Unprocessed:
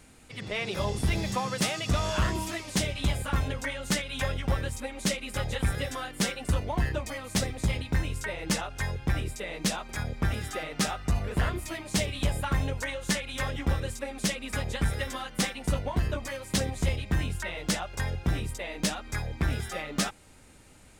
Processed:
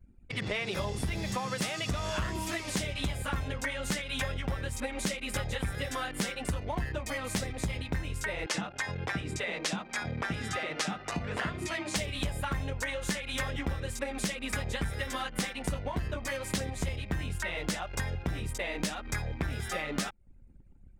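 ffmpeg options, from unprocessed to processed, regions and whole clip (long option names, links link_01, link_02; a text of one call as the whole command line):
ffmpeg -i in.wav -filter_complex "[0:a]asettb=1/sr,asplit=3[link_01][link_02][link_03];[link_01]atrim=end=8.464[link_04];[link_02]atrim=start=8.46:end=11.96,asetpts=PTS-STARTPTS,afade=type=in:duration=0.004:curve=qsin,afade=type=out:start_time=3.496:duration=0.004:curve=qsin,highpass=140,lowpass=7900,acrossover=split=430[link_05][link_06];[link_05]adelay=80[link_07];[link_07][link_06]amix=inputs=2:normalize=0,atrim=end_sample=154350[link_08];[link_03]atrim=start=11.956[link_09];[link_04][link_08]acrossfade=duration=0.004:curve1=hsin:curve2=qsin[link_10];[link_10][link_09]acrossfade=duration=0.004:curve1=qsin:curve2=hsin,anlmdn=0.0251,equalizer=frequency=1900:width=1.5:gain=2.5,acompressor=threshold=-37dB:ratio=6,volume=6.5dB" out.wav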